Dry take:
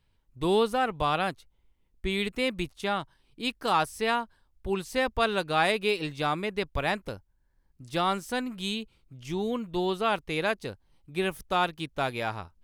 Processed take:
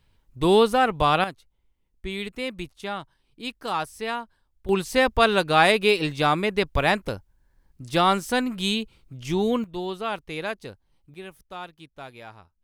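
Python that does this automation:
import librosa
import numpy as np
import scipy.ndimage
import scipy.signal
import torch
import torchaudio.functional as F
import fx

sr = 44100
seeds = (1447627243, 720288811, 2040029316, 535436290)

y = fx.gain(x, sr, db=fx.steps((0.0, 6.5), (1.24, -2.5), (4.69, 7.0), (9.64, -2.5), (11.14, -11.5)))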